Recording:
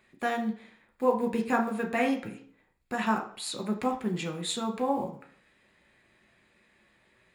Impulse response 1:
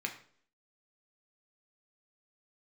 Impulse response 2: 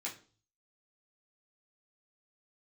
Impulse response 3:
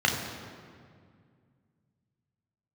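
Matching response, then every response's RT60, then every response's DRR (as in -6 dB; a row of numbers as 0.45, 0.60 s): 1; 0.55, 0.40, 2.1 s; 2.0, -6.0, -0.5 dB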